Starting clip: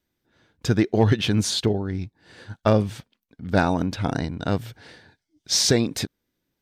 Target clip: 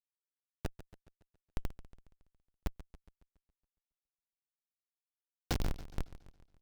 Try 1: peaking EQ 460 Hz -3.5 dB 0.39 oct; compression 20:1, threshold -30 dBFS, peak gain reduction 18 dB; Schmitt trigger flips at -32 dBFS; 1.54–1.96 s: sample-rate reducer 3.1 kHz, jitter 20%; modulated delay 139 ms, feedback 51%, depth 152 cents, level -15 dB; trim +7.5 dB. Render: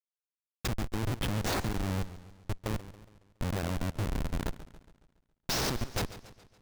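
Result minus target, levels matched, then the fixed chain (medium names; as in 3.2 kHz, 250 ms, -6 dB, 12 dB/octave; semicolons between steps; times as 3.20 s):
Schmitt trigger: distortion -27 dB
peaking EQ 460 Hz -3.5 dB 0.39 oct; compression 20:1, threshold -30 dBFS, peak gain reduction 18 dB; Schmitt trigger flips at -24 dBFS; 1.54–1.96 s: sample-rate reducer 3.1 kHz, jitter 20%; modulated delay 139 ms, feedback 51%, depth 152 cents, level -15 dB; trim +7.5 dB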